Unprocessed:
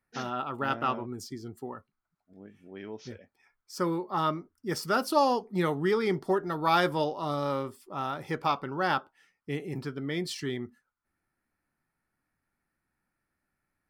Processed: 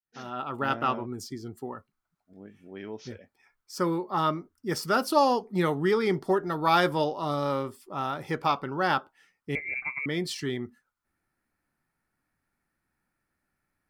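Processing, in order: opening faded in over 0.56 s; 9.55–10.06 inverted band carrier 2500 Hz; gain +2 dB

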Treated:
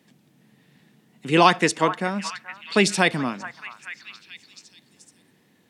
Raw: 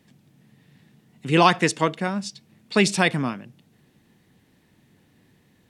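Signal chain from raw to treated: HPF 180 Hz 12 dB/oct; delay with a stepping band-pass 0.428 s, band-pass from 1200 Hz, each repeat 0.7 oct, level -10.5 dB; gain +1 dB

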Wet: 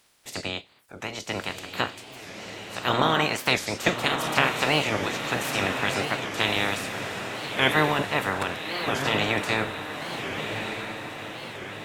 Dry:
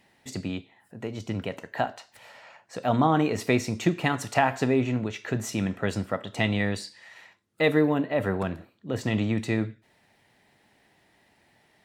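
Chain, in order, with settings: spectral limiter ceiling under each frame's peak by 25 dB; diffused feedback echo 1.23 s, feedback 54%, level -6 dB; record warp 45 rpm, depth 250 cents

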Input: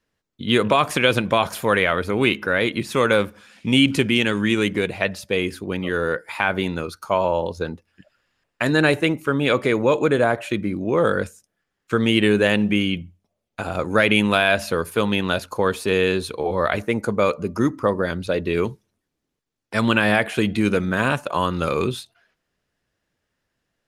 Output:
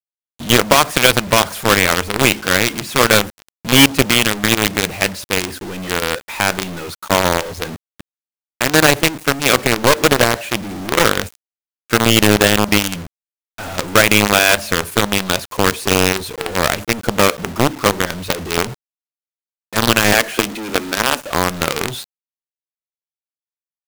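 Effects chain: 20.13–21.19 steep high-pass 220 Hz 72 dB/oct; companded quantiser 2-bit; gain -1 dB

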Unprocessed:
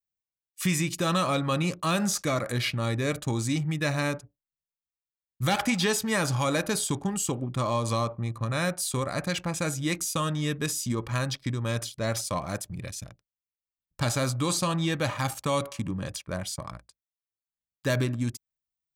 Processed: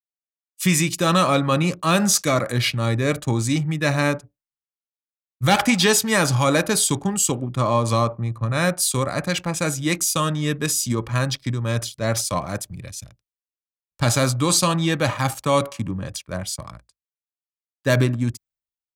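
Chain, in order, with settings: three-band expander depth 70%; gain +7 dB

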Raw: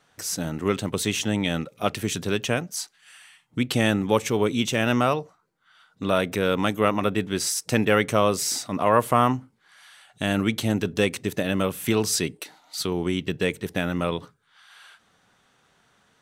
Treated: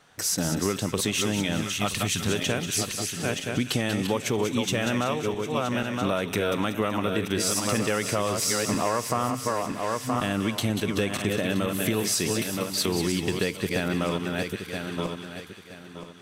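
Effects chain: regenerating reverse delay 0.486 s, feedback 51%, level -7 dB; 1.61–2.29 bell 410 Hz -9 dB 1.4 oct; in parallel at -2.5 dB: limiter -15 dBFS, peak gain reduction 11 dB; on the sum: compressor, threshold -22 dBFS, peak gain reduction 11.5 dB; thin delay 0.188 s, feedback 50%, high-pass 1900 Hz, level -7.5 dB

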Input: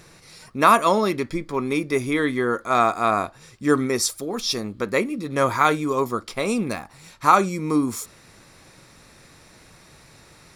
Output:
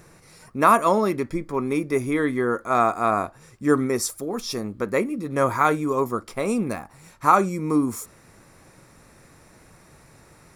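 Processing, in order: bell 3800 Hz -10 dB 1.4 oct

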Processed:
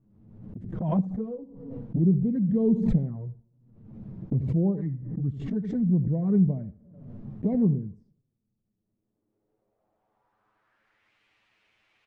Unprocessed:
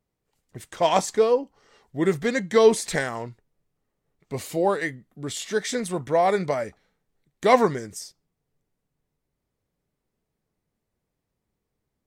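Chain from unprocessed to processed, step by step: low shelf 140 Hz +10.5 dB; gate -48 dBFS, range -17 dB; in parallel at +2.5 dB: vocal rider within 5 dB 2 s; on the sum: tilt +2.5 dB/oct; requantised 10-bit, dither triangular; low-pass sweep 180 Hz -> 2500 Hz, 8.63–11.19; on a send at -20 dB: reverb RT60 0.70 s, pre-delay 17 ms; on the sum: envelope flanger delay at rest 9.5 ms, full sweep at -17.5 dBFS; feedback echo 80 ms, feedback 17%, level -17 dB; backwards sustainer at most 53 dB/s; gain -3 dB

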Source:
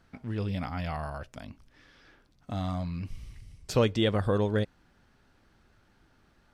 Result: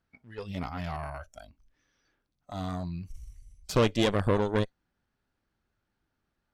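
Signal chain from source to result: spectral noise reduction 16 dB; added harmonics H 6 -15 dB, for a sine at -12 dBFS

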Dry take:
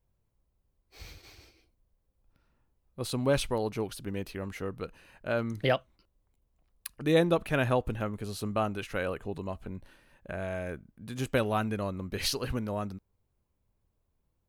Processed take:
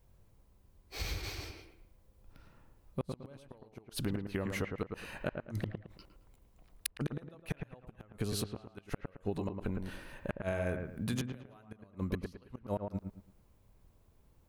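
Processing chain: flipped gate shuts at -23 dBFS, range -41 dB; compressor 6:1, threshold -43 dBFS, peak gain reduction 12.5 dB; dark delay 0.11 s, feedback 31%, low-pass 2100 Hz, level -5 dB; gain +10.5 dB

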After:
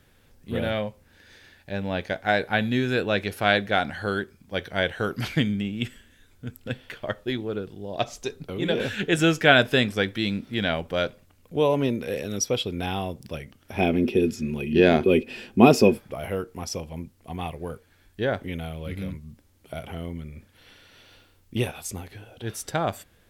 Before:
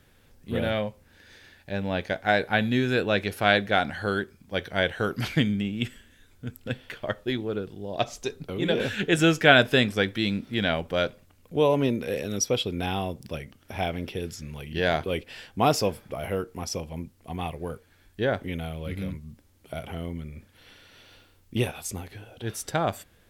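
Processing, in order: 13.77–15.98 small resonant body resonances 240/360/2500 Hz, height 18 dB, ringing for 60 ms

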